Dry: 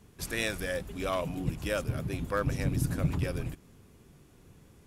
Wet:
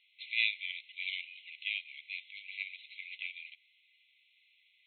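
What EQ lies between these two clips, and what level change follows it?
brick-wall FIR band-pass 2–4.2 kHz; distance through air 170 m; +8.5 dB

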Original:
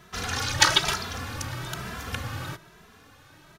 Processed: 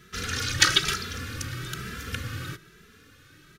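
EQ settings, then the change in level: high-order bell 790 Hz -16 dB 1 oct; 0.0 dB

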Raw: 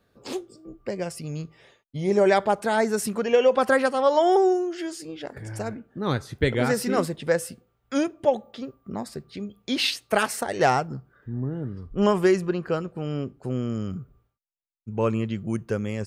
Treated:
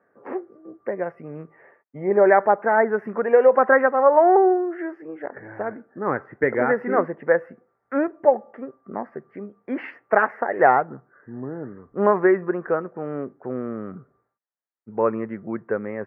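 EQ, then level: Bessel high-pass 380 Hz, order 2; elliptic low-pass 1.9 kHz, stop band 50 dB; +6.0 dB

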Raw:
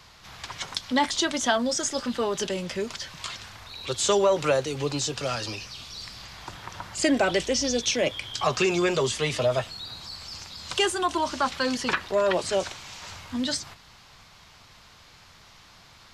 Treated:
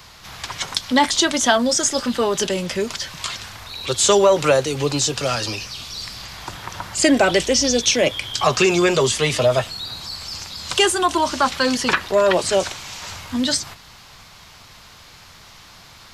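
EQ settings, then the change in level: treble shelf 11 kHz +10 dB; +7.0 dB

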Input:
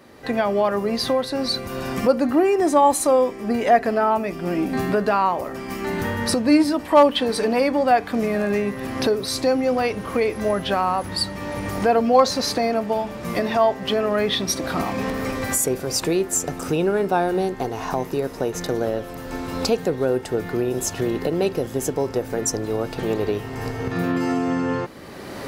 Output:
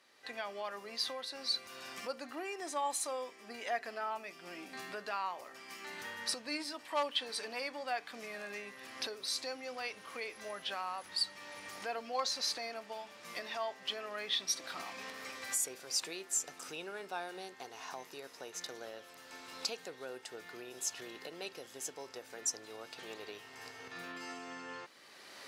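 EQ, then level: band-pass filter 4.6 kHz, Q 0.59; -9.0 dB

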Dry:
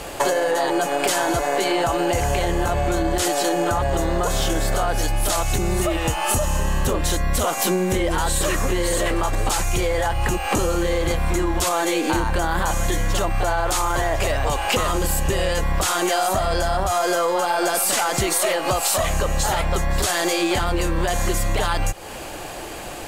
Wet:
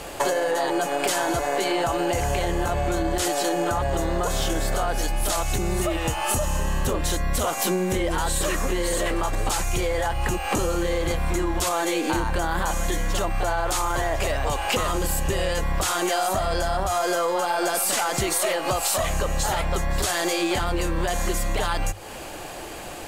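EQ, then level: hum notches 50/100 Hz; -3.0 dB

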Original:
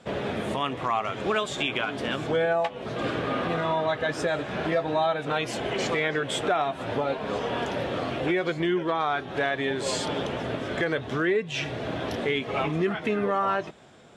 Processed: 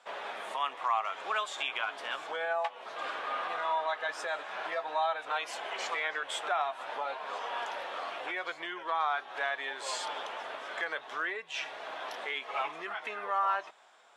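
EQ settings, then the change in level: resonant high-pass 920 Hz, resonance Q 1.7; -6.5 dB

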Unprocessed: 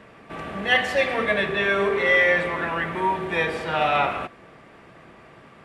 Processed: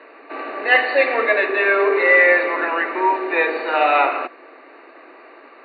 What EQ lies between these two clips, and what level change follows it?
steep high-pass 270 Hz 72 dB/octave; Butterworth band-stop 3.3 kHz, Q 3.8; brick-wall FIR low-pass 4.6 kHz; +5.5 dB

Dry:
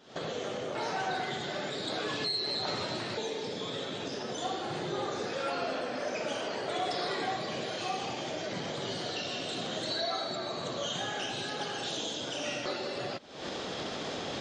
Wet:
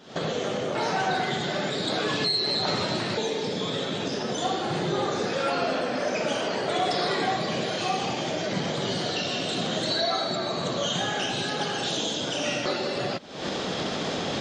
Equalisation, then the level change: peaking EQ 180 Hz +5 dB 0.74 oct; +7.0 dB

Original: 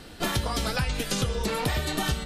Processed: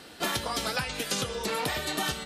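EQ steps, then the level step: high-pass 360 Hz 6 dB/octave; 0.0 dB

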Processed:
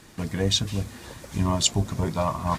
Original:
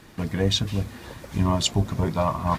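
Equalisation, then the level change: peaking EQ 7.8 kHz +7.5 dB 1.4 oct; -2.0 dB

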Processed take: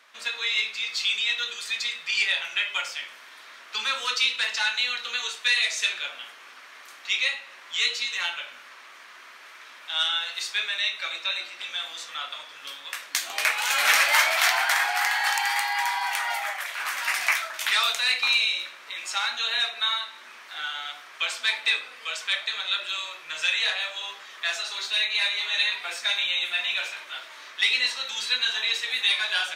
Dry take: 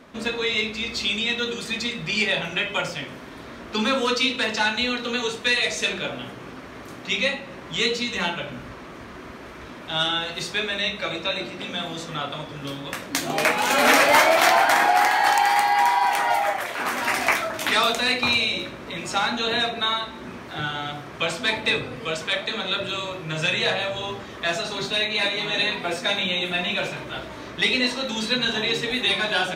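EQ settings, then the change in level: high-pass 1.5 kHz 12 dB/octave; 0.0 dB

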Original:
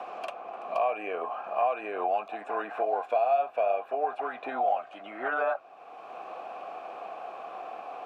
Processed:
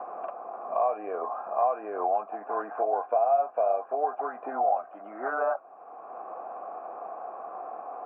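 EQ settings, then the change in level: high-pass 180 Hz 12 dB/octave; four-pole ladder low-pass 1.6 kHz, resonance 25%; distance through air 310 m; +7.0 dB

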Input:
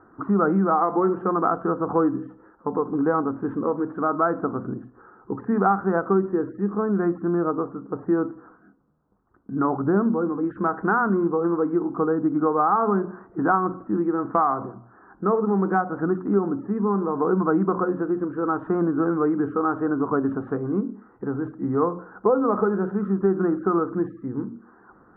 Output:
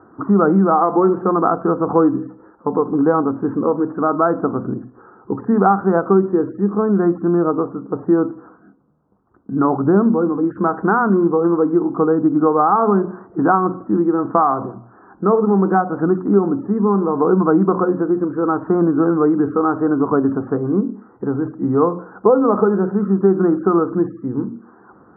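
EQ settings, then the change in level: high-pass 74 Hz; low-pass 1.3 kHz 12 dB/octave; +7.0 dB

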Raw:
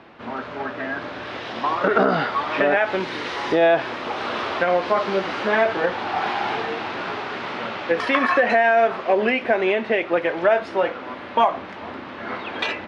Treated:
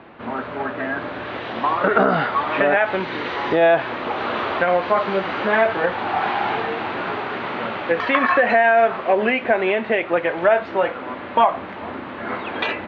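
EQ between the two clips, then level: distance through air 220 m; band-stop 5.2 kHz, Q 7.4; dynamic bell 340 Hz, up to -4 dB, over -29 dBFS, Q 0.89; +4.0 dB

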